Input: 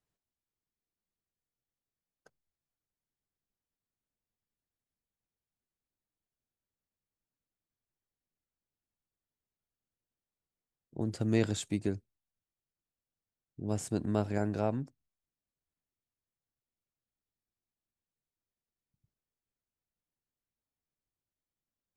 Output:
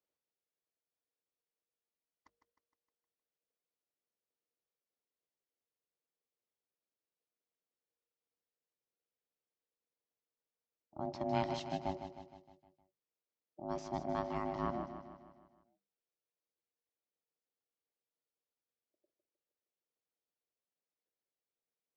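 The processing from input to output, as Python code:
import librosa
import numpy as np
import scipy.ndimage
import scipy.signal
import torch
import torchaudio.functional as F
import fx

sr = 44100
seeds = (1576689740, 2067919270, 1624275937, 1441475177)

y = scipy.signal.sosfilt(scipy.signal.ellip(4, 1.0, 40, 5900.0, 'lowpass', fs=sr, output='sos'), x)
y = y * np.sin(2.0 * np.pi * 470.0 * np.arange(len(y)) / sr)
y = scipy.signal.sosfilt(scipy.signal.butter(2, 72.0, 'highpass', fs=sr, output='sos'), y)
y = fx.hum_notches(y, sr, base_hz=50, count=4)
y = fx.echo_feedback(y, sr, ms=155, feedback_pct=53, wet_db=-9.0)
y = y * 10.0 ** (-2.5 / 20.0)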